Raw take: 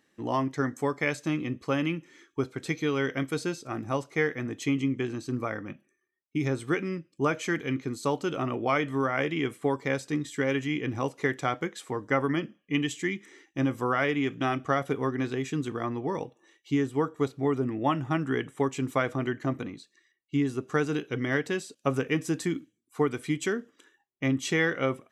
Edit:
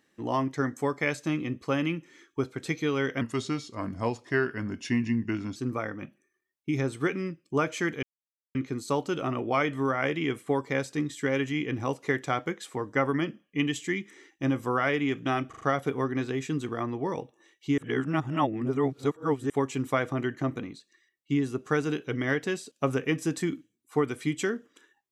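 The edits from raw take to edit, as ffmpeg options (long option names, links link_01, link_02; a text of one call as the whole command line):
ffmpeg -i in.wav -filter_complex "[0:a]asplit=9[link_01][link_02][link_03][link_04][link_05][link_06][link_07][link_08][link_09];[link_01]atrim=end=3.214[link_10];[link_02]atrim=start=3.21:end=5.23,asetpts=PTS-STARTPTS,asetrate=37926,aresample=44100[link_11];[link_03]atrim=start=5.226:end=7.7,asetpts=PTS-STARTPTS,afade=type=out:start_time=2.47:duration=0.004:curve=hsin,apad=pad_dur=0.52[link_12];[link_04]atrim=start=7.7:end=14.682,asetpts=PTS-STARTPTS,afade=type=in:duration=0.004:curve=hsin[link_13];[link_05]atrim=start=14.638:end=14.682[link_14];[link_06]atrim=start=14.638:end=14.682[link_15];[link_07]atrim=start=14.638:end=16.812[link_16];[link_08]atrim=start=16.808:end=18.532,asetpts=PTS-STARTPTS,areverse[link_17];[link_09]atrim=start=18.528[link_18];[link_10][link_11]acrossfade=duration=0.004:curve1=hsin:curve2=hsin[link_19];[link_12][link_13]concat=n=2:v=0:a=1[link_20];[link_19][link_20]acrossfade=duration=0.004:curve1=hsin:curve2=hsin[link_21];[link_21][link_14]acrossfade=duration=0.004:curve1=hsin:curve2=hsin[link_22];[link_22][link_15]acrossfade=duration=0.004:curve1=hsin:curve2=hsin[link_23];[link_23][link_16]acrossfade=duration=0.004:curve1=hsin:curve2=hsin[link_24];[link_24][link_17]acrossfade=duration=0.004:curve1=hsin:curve2=hsin[link_25];[link_25][link_18]acrossfade=duration=0.004:curve1=hsin:curve2=hsin" out.wav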